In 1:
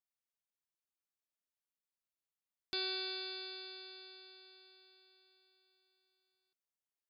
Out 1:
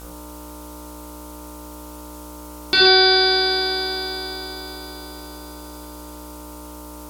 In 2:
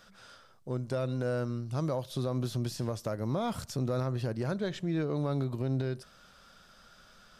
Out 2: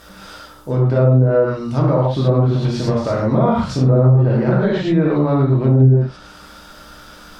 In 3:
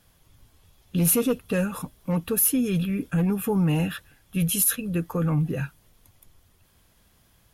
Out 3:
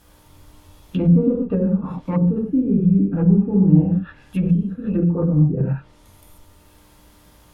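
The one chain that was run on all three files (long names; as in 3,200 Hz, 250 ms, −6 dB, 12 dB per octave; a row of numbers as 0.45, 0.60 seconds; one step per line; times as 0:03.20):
hum with harmonics 60 Hz, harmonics 25, −63 dBFS −4 dB per octave
high-shelf EQ 6,900 Hz −4 dB
reverb whose tail is shaped and stops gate 160 ms flat, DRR −4.5 dB
background noise blue −64 dBFS
treble cut that deepens with the level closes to 340 Hz, closed at −17 dBFS
normalise the peak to −2 dBFS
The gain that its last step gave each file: +21.5, +11.5, +3.5 decibels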